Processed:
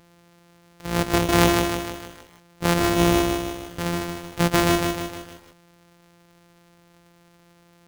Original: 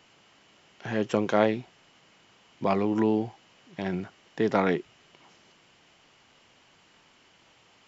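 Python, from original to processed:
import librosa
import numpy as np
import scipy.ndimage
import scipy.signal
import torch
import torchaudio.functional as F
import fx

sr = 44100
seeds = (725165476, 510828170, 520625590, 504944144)

y = np.r_[np.sort(x[:len(x) // 256 * 256].reshape(-1, 256), axis=1).ravel(), x[len(x) // 256 * 256:]]
y = fx.echo_crushed(y, sr, ms=154, feedback_pct=55, bits=8, wet_db=-4)
y = F.gain(torch.from_numpy(y), 4.5).numpy()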